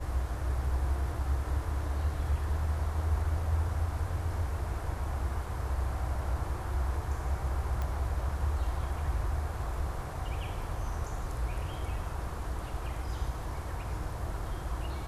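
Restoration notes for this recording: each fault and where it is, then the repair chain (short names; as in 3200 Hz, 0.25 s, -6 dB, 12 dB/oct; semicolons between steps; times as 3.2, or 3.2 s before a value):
7.82 pop -22 dBFS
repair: de-click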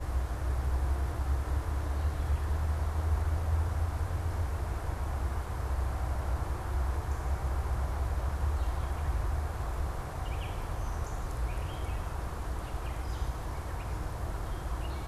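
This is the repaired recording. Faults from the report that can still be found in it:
none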